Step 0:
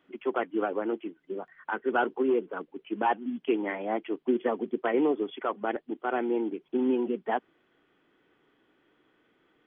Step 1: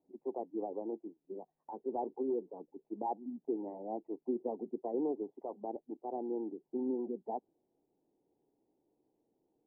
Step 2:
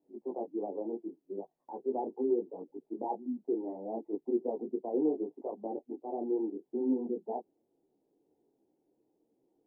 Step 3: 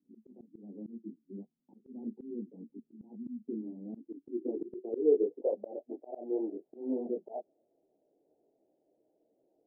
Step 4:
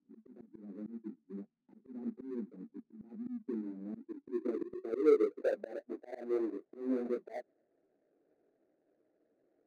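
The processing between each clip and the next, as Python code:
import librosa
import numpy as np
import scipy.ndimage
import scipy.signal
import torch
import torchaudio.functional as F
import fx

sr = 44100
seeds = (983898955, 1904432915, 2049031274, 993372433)

y1 = scipy.signal.sosfilt(scipy.signal.ellip(4, 1.0, 40, 870.0, 'lowpass', fs=sr, output='sos'), x)
y1 = y1 * 10.0 ** (-9.0 / 20.0)
y2 = fx.peak_eq(y1, sr, hz=350.0, db=8.0, octaves=2.6)
y2 = fx.detune_double(y2, sr, cents=25)
y3 = fx.filter_sweep_lowpass(y2, sr, from_hz=220.0, to_hz=630.0, start_s=3.7, end_s=5.83, q=7.3)
y3 = fx.auto_swell(y3, sr, attack_ms=217.0)
y3 = y3 * 10.0 ** (-4.0 / 20.0)
y4 = scipy.ndimage.median_filter(y3, 41, mode='constant')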